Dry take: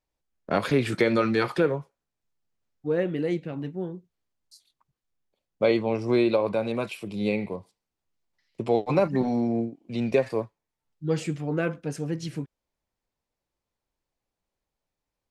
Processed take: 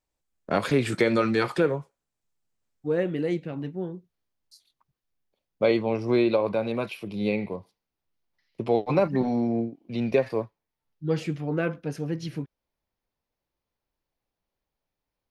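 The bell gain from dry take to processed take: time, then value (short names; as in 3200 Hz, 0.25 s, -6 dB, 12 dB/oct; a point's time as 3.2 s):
bell 7800 Hz 0.43 oct
2.93 s +5 dB
3.73 s -5.5 dB
5.73 s -5.5 dB
6.23 s -13 dB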